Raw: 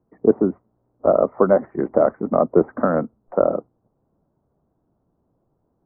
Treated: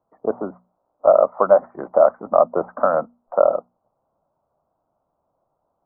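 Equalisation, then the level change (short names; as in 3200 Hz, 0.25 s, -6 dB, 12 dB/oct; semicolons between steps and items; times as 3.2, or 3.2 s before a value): band shelf 880 Hz +15.5 dB; notches 60/120/180/240 Hz; -11.0 dB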